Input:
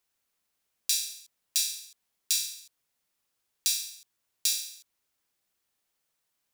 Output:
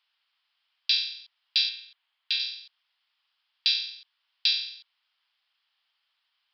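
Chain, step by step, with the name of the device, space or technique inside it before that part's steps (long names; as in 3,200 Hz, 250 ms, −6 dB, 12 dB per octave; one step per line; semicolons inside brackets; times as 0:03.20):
0:01.69–0:02.40: low-pass filter 3,600 Hz 12 dB per octave
musical greeting card (downsampling to 11,025 Hz; high-pass filter 890 Hz 24 dB per octave; parametric band 3,100 Hz +8.5 dB 0.4 octaves)
level +6.5 dB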